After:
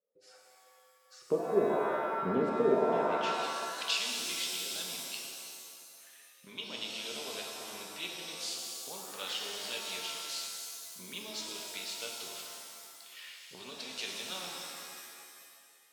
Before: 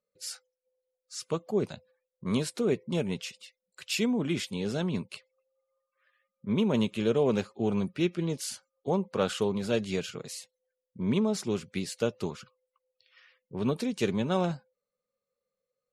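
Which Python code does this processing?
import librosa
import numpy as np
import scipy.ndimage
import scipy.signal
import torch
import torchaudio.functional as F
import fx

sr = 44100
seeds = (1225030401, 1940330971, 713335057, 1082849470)

y = fx.recorder_agc(x, sr, target_db=-20.0, rise_db_per_s=14.0, max_gain_db=30)
y = fx.filter_sweep_bandpass(y, sr, from_hz=450.0, to_hz=3700.0, start_s=2.79, end_s=3.34, q=1.7)
y = fx.rev_shimmer(y, sr, seeds[0], rt60_s=2.1, semitones=7, shimmer_db=-2, drr_db=-0.5)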